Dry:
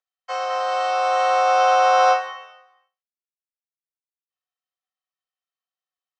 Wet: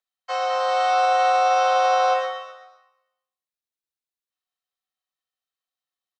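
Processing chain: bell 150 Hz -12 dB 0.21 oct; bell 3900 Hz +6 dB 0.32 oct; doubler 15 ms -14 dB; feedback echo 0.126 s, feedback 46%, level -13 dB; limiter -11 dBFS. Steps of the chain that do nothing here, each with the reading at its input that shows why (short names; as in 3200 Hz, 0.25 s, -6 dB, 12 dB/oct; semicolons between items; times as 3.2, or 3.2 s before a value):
bell 150 Hz: input band starts at 360 Hz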